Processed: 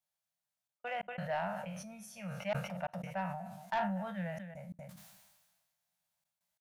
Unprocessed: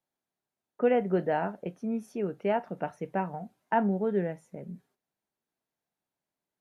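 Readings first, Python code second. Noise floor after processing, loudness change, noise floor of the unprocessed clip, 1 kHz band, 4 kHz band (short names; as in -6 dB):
under -85 dBFS, -9.5 dB, under -85 dBFS, -6.0 dB, n/a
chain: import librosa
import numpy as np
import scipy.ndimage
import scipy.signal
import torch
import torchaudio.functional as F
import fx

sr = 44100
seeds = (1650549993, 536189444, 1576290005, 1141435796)

p1 = fx.spec_trails(x, sr, decay_s=0.36)
p2 = scipy.signal.sosfilt(scipy.signal.ellip(3, 1.0, 40, [190.0, 580.0], 'bandstop', fs=sr, output='sos'), p1)
p3 = fx.high_shelf(p2, sr, hz=2400.0, db=9.0)
p4 = fx.rider(p3, sr, range_db=5, speed_s=2.0)
p5 = fx.step_gate(p4, sr, bpm=89, pattern='xxxx.x.xxxx', floor_db=-60.0, edge_ms=4.5)
p6 = p5 + fx.echo_single(p5, sr, ms=238, db=-23.5, dry=0)
p7 = 10.0 ** (-20.0 / 20.0) * np.tanh(p6 / 10.0 ** (-20.0 / 20.0))
p8 = fx.sustainer(p7, sr, db_per_s=40.0)
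y = F.gain(torch.from_numpy(p8), -7.0).numpy()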